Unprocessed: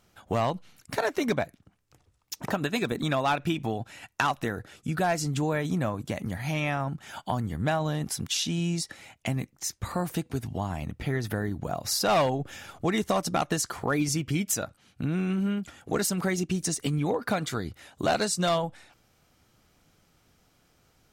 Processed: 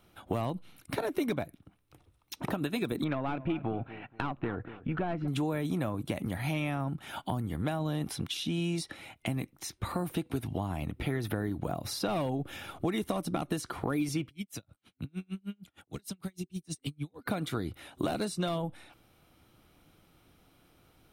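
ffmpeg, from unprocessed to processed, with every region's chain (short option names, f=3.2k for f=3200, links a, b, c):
-filter_complex "[0:a]asettb=1/sr,asplit=3[a][b][c];[a]atrim=end=3.044[d];[b]atrim=start=3.04:end=5.28,asetpts=PTS-STARTPTS,afade=t=in:d=0.004:c=qsin,afade=t=out:st=2.236:d=0.004:c=qsin,lowpass=f=2.5k:w=0.5412,lowpass=f=2.5k:w=1.3066,aeval=exprs='(tanh(8.91*val(0)+0.35)-tanh(0.35))/8.91':c=same,asplit=2[e][f];[f]adelay=237,lowpass=f=1.9k:p=1,volume=-17dB,asplit=2[g][h];[h]adelay=237,lowpass=f=1.9k:p=1,volume=0.29,asplit=2[i][j];[j]adelay=237,lowpass=f=1.9k:p=1,volume=0.29[k];[e][g][i][k]amix=inputs=4:normalize=0,atrim=end_sample=98784[l];[c]atrim=start=5.276[m];[d][l]acrossfade=d=0.004:c1=hsin:c2=qsin[n];[n][m]acrossfade=d=0.004:c1=qsin:c2=hsin,asettb=1/sr,asplit=3[o][p][q];[o]atrim=end=14.264[r];[p]atrim=start=14.26:end=17.26,asetpts=PTS-STARTPTS,afade=t=in:d=0.004:c=qsin,afade=t=out:st=2.996:d=0.004:c=qsin,acrossover=split=160|3000[s][t][u];[t]acompressor=threshold=-44dB:ratio=4:attack=3.2:release=140:knee=2.83:detection=peak[v];[s][v][u]amix=inputs=3:normalize=0,aeval=exprs='val(0)*pow(10,-39*(0.5-0.5*cos(2*PI*6.5*n/s))/20)':c=same[w];[q]atrim=start=17.256[x];[r][w]acrossfade=d=0.004:c1=hsin:c2=qsin[y];[y][x]acrossfade=d=0.004:c1=qsin:c2=hsin,superequalizer=6b=1.58:11b=0.708:14b=0.447:15b=0.316,acrossover=split=390|7400[z][aa][ab];[z]acompressor=threshold=-33dB:ratio=4[ac];[aa]acompressor=threshold=-37dB:ratio=4[ad];[ab]acompressor=threshold=-51dB:ratio=4[ae];[ac][ad][ae]amix=inputs=3:normalize=0,volume=1.5dB"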